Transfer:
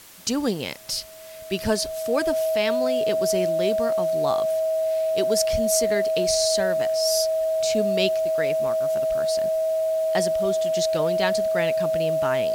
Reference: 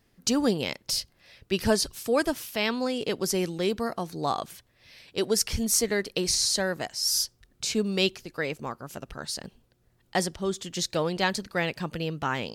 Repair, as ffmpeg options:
-af "bandreject=f=640:w=30,afwtdn=0.005"

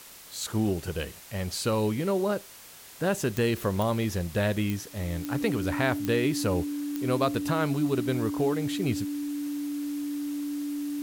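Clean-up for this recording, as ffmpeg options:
-af "adeclick=t=4,bandreject=f=290:w=30,afftdn=nr=27:nf=-47"

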